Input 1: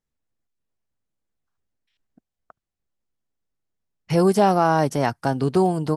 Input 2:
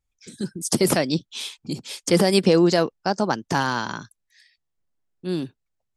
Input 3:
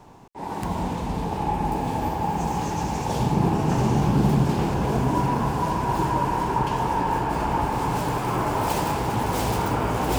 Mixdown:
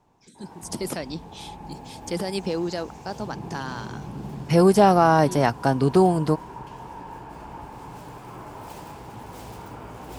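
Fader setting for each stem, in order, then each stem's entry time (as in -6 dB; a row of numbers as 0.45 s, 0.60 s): +1.5 dB, -10.5 dB, -15.5 dB; 0.40 s, 0.00 s, 0.00 s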